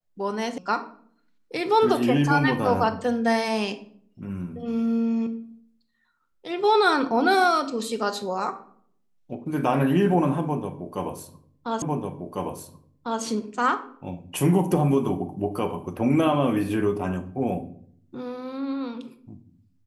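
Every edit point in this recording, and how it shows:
0.58 sound cut off
11.82 repeat of the last 1.4 s

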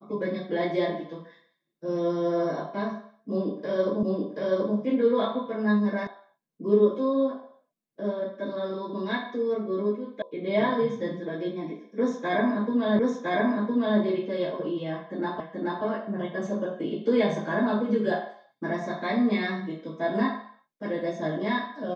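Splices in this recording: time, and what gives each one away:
4.03 repeat of the last 0.73 s
6.07 sound cut off
10.22 sound cut off
12.99 repeat of the last 1.01 s
15.4 repeat of the last 0.43 s

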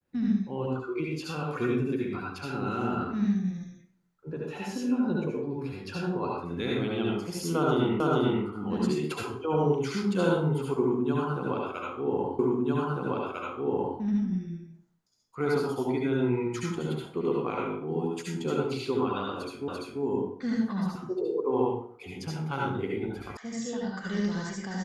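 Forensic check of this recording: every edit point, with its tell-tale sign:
8 repeat of the last 0.44 s
12.39 repeat of the last 1.6 s
19.68 repeat of the last 0.34 s
23.37 sound cut off

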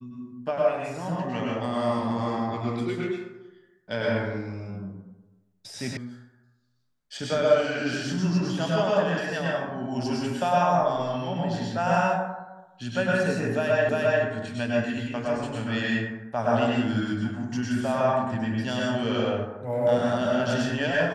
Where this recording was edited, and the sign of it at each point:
5.97 sound cut off
13.89 repeat of the last 0.35 s

